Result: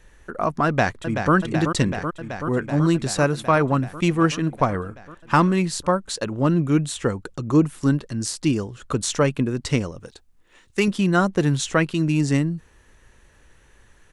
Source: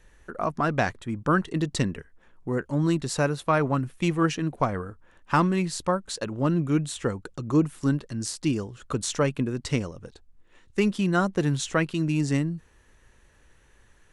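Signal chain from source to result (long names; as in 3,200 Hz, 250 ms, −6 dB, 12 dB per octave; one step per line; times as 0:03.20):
0:00.66–0:01.34: delay throw 380 ms, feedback 80%, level −7 dB
0:10.00–0:10.88: spectral tilt +1.5 dB per octave
level +4.5 dB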